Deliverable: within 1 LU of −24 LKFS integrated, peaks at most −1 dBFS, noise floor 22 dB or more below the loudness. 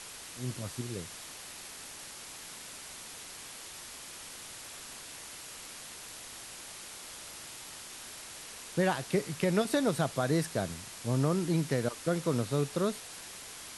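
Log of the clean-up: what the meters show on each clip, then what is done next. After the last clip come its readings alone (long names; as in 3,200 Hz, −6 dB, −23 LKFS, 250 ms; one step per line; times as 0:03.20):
background noise floor −47 dBFS; target noise floor −57 dBFS; integrated loudness −35.0 LKFS; sample peak −14.5 dBFS; target loudness −24.0 LKFS
→ broadband denoise 10 dB, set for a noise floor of −47 dBFS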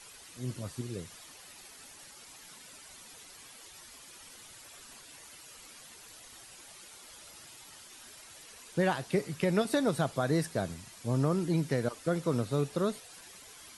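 background noise floor −52 dBFS; target noise floor −54 dBFS
→ broadband denoise 6 dB, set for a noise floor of −52 dBFS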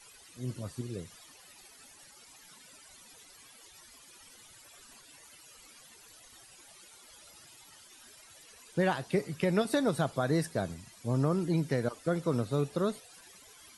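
background noise floor −56 dBFS; integrated loudness −32.0 LKFS; sample peak −15.0 dBFS; target loudness −24.0 LKFS
→ level +8 dB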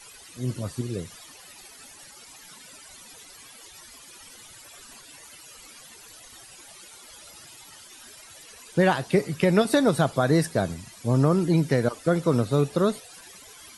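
integrated loudness −24.0 LKFS; sample peak −7.0 dBFS; background noise floor −48 dBFS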